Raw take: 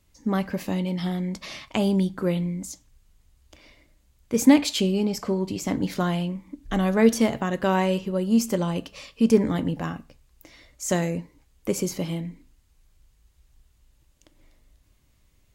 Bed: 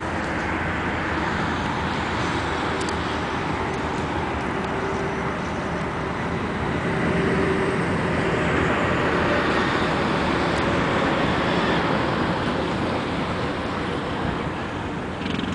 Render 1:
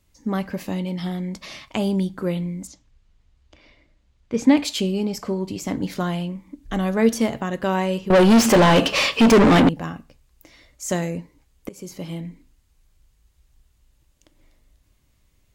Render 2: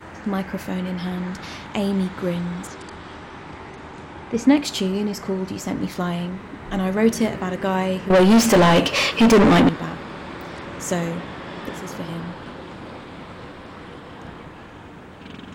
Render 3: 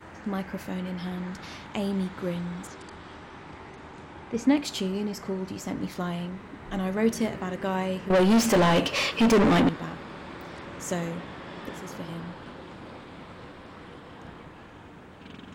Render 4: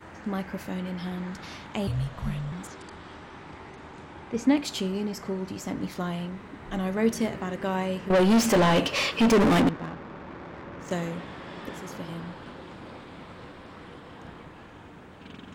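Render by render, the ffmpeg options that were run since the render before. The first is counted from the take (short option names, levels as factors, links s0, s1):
-filter_complex "[0:a]asettb=1/sr,asplit=3[s0][s1][s2];[s0]atrim=end=2.674[s3];[s1]atrim=start=2.67:end=4.57,asetpts=PTS-STARTPTS,afade=t=in:d=0.004:c=qsin,afade=t=out:st=1.896:d=0.004:c=qsin,lowpass=4500[s4];[s2]atrim=start=4.566[s5];[s3][s4]acrossfade=d=0.004:c1=hsin:c2=qsin[s6];[s6][s5]acrossfade=d=0.004:c1=qsin:c2=hsin,asettb=1/sr,asplit=3[s7][s8][s9];[s7]atrim=end=8.104[s10];[s8]atrim=start=8.1:end=9.69,asetpts=PTS-STARTPTS,afade=t=in:d=0.004:c=qsin,afade=t=out:st=1.586:d=0.004:c=qsin,asplit=2[s11][s12];[s12]highpass=f=720:p=1,volume=70.8,asoftclip=type=tanh:threshold=0.531[s13];[s11][s13]amix=inputs=2:normalize=0,lowpass=f=2400:p=1,volume=0.501[s14];[s9]atrim=start=9.686[s15];[s10][s14]acrossfade=d=0.004:c1=hsin:c2=qsin[s16];[s16][s15]acrossfade=d=0.004:c1=qsin:c2=hsin,asplit=2[s17][s18];[s17]atrim=end=11.69,asetpts=PTS-STARTPTS,afade=t=out:st=11.686:d=0.004:c=hsin:silence=0.0707946[s19];[s18]atrim=start=11.69,asetpts=PTS-STARTPTS,afade=t=in:d=0.55:silence=0.0707946[s20];[s19][s20]concat=n=2:v=0:a=1"
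-filter_complex "[1:a]volume=0.237[s0];[0:a][s0]amix=inputs=2:normalize=0"
-af "volume=0.473"
-filter_complex "[0:a]asettb=1/sr,asplit=3[s0][s1][s2];[s0]atrim=end=1.874[s3];[s1]atrim=start=1.87:end=2.52,asetpts=PTS-STARTPTS,afade=t=in:d=0.004:c=qsin,afade=t=out:st=0.646:d=0.004:c=qsin,afreqshift=-320[s4];[s2]atrim=start=2.516[s5];[s3][s4]acrossfade=d=0.004:c1=hsin:c2=qsin[s6];[s6][s5]acrossfade=d=0.004:c1=qsin:c2=hsin,asettb=1/sr,asplit=3[s7][s8][s9];[s7]atrim=end=9.404[s10];[s8]atrim=start=9.4:end=10.91,asetpts=PTS-STARTPTS,afade=t=in:d=0.004:c=qsin,afade=t=out:st=1.506:d=0.004:c=qsin,adynamicsmooth=sensitivity=7:basefreq=1500[s11];[s9]atrim=start=10.906[s12];[s10][s11]acrossfade=d=0.004:c1=hsin:c2=qsin[s13];[s13][s12]acrossfade=d=0.004:c1=qsin:c2=hsin"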